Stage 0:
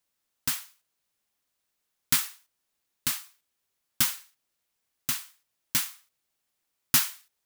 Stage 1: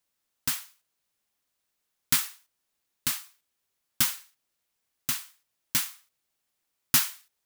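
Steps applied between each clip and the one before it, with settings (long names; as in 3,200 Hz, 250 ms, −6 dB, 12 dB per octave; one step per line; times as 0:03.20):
no processing that can be heard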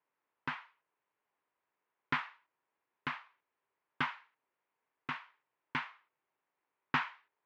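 loudspeaker in its box 170–2,300 Hz, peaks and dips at 210 Hz −8 dB, 420 Hz +4 dB, 970 Hz +8 dB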